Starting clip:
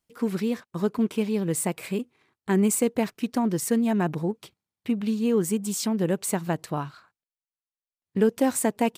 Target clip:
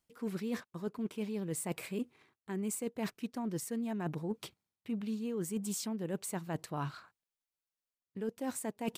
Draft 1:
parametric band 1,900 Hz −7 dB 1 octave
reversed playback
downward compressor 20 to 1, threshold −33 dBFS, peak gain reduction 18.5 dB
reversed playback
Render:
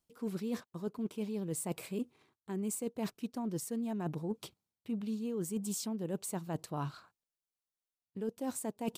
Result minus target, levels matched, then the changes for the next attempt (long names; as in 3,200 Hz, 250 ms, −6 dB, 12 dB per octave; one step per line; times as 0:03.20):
2,000 Hz band −5.0 dB
remove: parametric band 1,900 Hz −7 dB 1 octave